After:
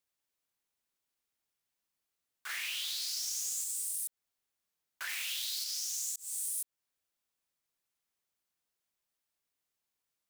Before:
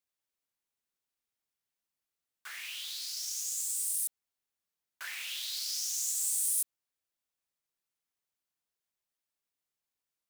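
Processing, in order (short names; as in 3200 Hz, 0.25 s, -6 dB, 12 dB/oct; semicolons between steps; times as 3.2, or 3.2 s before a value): 2.49–3.64 sample leveller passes 1; 5.09–5.64 high shelf 4900 Hz +5.5 dB; 6.16–6.62 fade in linear; compressor, threshold -36 dBFS, peak gain reduction 9 dB; gain +2.5 dB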